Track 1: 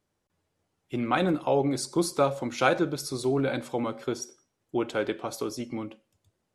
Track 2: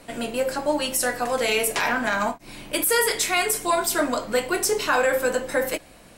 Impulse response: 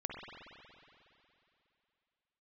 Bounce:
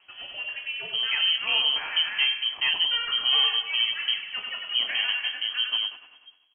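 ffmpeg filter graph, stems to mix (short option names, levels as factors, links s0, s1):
-filter_complex "[0:a]asubboost=boost=9.5:cutoff=150,lowpass=f=1000:p=1,volume=1.06[s0];[1:a]volume=0.266,asplit=2[s1][s2];[s2]volume=0.596,aecho=0:1:98|196|294|392|490|588|686|784:1|0.56|0.314|0.176|0.0983|0.0551|0.0308|0.0173[s3];[s0][s1][s3]amix=inputs=3:normalize=0,asoftclip=type=hard:threshold=0.158,lowpass=f=2800:t=q:w=0.5098,lowpass=f=2800:t=q:w=0.6013,lowpass=f=2800:t=q:w=0.9,lowpass=f=2800:t=q:w=2.563,afreqshift=-3300"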